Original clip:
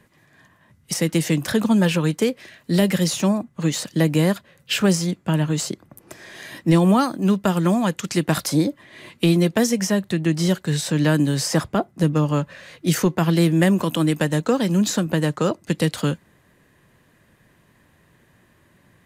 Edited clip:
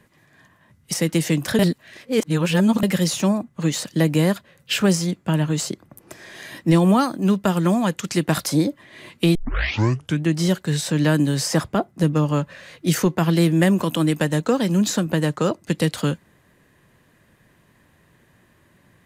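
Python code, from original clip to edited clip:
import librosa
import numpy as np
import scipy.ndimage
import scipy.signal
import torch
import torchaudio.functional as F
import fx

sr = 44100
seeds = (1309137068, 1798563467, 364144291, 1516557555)

y = fx.edit(x, sr, fx.reverse_span(start_s=1.59, length_s=1.24),
    fx.tape_start(start_s=9.35, length_s=0.9), tone=tone)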